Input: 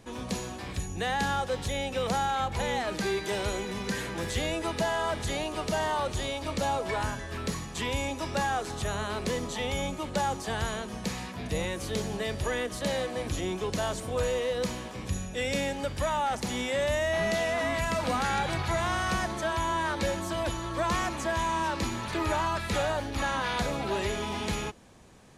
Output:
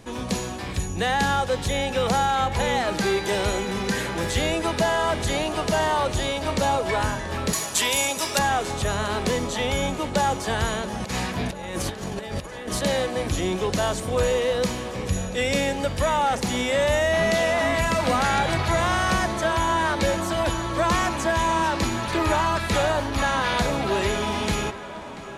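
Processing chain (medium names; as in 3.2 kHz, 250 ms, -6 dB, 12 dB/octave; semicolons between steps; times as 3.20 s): 7.53–8.39 s: RIAA curve recording; 11.00–12.81 s: compressor with a negative ratio -36 dBFS, ratio -0.5; tape echo 685 ms, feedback 80%, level -15 dB, low-pass 4.1 kHz; trim +6.5 dB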